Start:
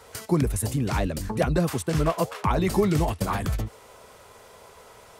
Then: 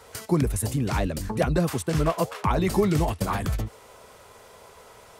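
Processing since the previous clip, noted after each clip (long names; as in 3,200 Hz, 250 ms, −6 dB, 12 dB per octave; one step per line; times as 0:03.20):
no processing that can be heard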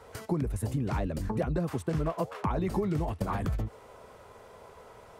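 high-shelf EQ 2,300 Hz −12 dB
downward compressor 4 to 1, threshold −27 dBFS, peak gain reduction 9.5 dB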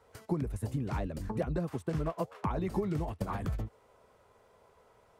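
expander for the loud parts 1.5 to 1, over −46 dBFS
level −1.5 dB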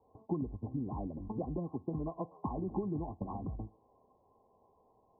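Chebyshev low-pass with heavy ripple 1,100 Hz, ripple 9 dB
convolution reverb, pre-delay 3 ms, DRR 20 dB
level +1 dB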